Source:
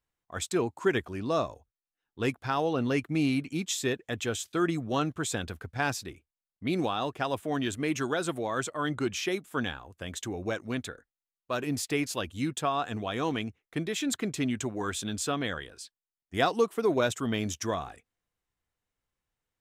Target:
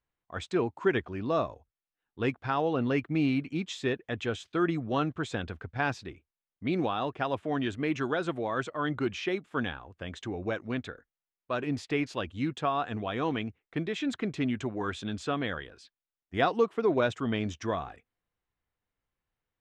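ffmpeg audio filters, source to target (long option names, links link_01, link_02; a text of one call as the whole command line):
ffmpeg -i in.wav -af "lowpass=3200" out.wav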